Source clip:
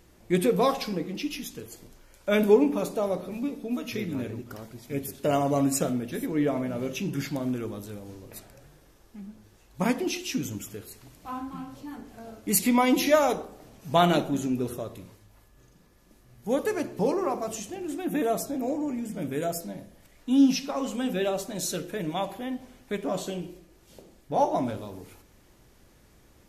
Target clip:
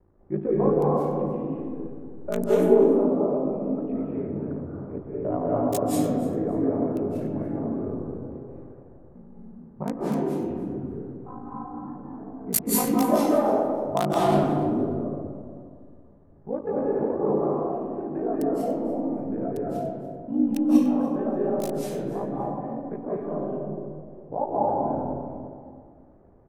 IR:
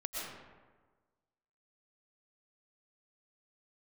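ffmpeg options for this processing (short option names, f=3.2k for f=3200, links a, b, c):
-filter_complex "[0:a]highshelf=f=9.9k:g=8,bandreject=f=50:t=h:w=6,bandreject=f=100:t=h:w=6,bandreject=f=150:t=h:w=6,bandreject=f=200:t=h:w=6,bandreject=f=250:t=h:w=6,aeval=exprs='val(0)*sin(2*PI*27*n/s)':c=same,acrossover=split=420|1200[a][b][c];[c]aeval=exprs='val(0)*gte(abs(val(0)),0.0841)':c=same[d];[a][b][d]amix=inputs=3:normalize=0,aecho=1:1:291|582:0.126|0.0214[e];[1:a]atrim=start_sample=2205,asetrate=27783,aresample=44100[f];[e][f]afir=irnorm=-1:irlink=0"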